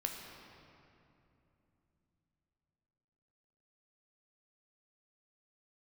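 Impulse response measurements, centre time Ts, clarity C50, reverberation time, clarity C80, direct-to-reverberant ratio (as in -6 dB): 82 ms, 3.5 dB, 2.9 s, 4.5 dB, 1.5 dB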